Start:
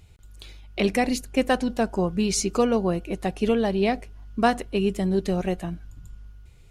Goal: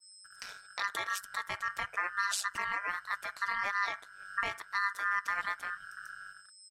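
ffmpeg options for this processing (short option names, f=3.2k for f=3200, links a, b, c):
-filter_complex "[0:a]agate=range=-50dB:threshold=-43dB:ratio=16:detection=peak,aeval=exprs='val(0)+0.000708*sin(2*PI*6700*n/s)':c=same,asplit=2[a][b];[b]acompressor=mode=upward:threshold=-25dB:ratio=2.5,volume=0dB[c];[a][c]amix=inputs=2:normalize=0,alimiter=limit=-13.5dB:level=0:latency=1:release=356,aeval=exprs='val(0)*sin(2*PI*1500*n/s)':c=same,aecho=1:1:1.7:0.4,aeval=exprs='val(0)*sin(2*PI*96*n/s)':c=same,adynamicequalizer=threshold=0.00447:dfrequency=2500:dqfactor=0.7:tfrequency=2500:tqfactor=0.7:attack=5:release=100:ratio=0.375:range=2:mode=boostabove:tftype=highshelf,volume=-7.5dB"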